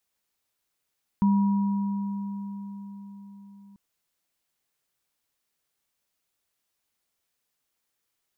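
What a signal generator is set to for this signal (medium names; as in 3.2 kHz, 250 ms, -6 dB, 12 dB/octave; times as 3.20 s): sine partials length 2.54 s, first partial 200 Hz, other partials 963 Hz, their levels -13 dB, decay 4.89 s, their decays 4.00 s, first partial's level -17 dB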